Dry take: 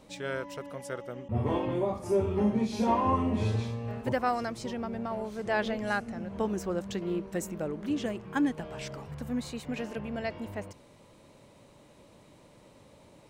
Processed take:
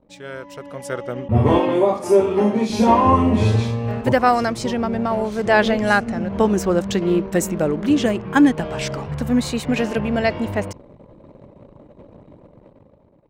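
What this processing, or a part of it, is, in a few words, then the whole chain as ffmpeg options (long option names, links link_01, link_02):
voice memo with heavy noise removal: -filter_complex "[0:a]asettb=1/sr,asplit=3[link_01][link_02][link_03];[link_01]atrim=end=1.604[link_04];[link_02]atrim=start=1.6:end=2.7,asetpts=PTS-STARTPTS,afade=type=in:duration=0.004:curve=qsin,afade=type=out:start_time=1.096:duration=0.004:curve=qsin,highpass=260[link_05];[link_03]atrim=start=2.696[link_06];[link_04][link_05]acrossfade=duration=0.004:curve1=hsin:curve2=qsin[link_07];[link_07][link_06]acrossfade=duration=0.004:curve1=qsin:curve2=hsin,anlmdn=0.001,dynaudnorm=framelen=160:gausssize=11:maxgain=15dB"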